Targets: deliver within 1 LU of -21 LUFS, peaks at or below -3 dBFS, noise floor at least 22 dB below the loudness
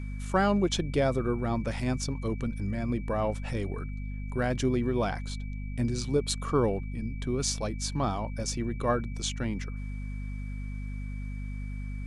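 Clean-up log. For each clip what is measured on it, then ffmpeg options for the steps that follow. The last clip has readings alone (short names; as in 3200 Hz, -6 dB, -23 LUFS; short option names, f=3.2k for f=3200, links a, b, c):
hum 50 Hz; harmonics up to 250 Hz; hum level -33 dBFS; steady tone 2300 Hz; tone level -51 dBFS; loudness -31.0 LUFS; peak -11.0 dBFS; loudness target -21.0 LUFS
-> -af "bandreject=f=50:t=h:w=6,bandreject=f=100:t=h:w=6,bandreject=f=150:t=h:w=6,bandreject=f=200:t=h:w=6,bandreject=f=250:t=h:w=6"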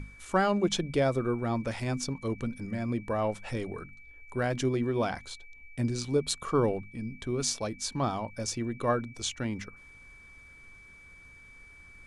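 hum none; steady tone 2300 Hz; tone level -51 dBFS
-> -af "bandreject=f=2.3k:w=30"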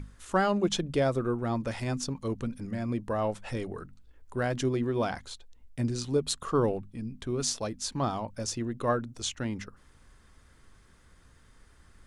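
steady tone none; loudness -31.0 LUFS; peak -11.0 dBFS; loudness target -21.0 LUFS
-> -af "volume=10dB,alimiter=limit=-3dB:level=0:latency=1"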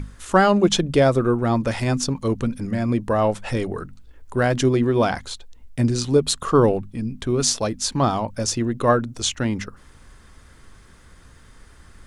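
loudness -21.0 LUFS; peak -3.0 dBFS; noise floor -49 dBFS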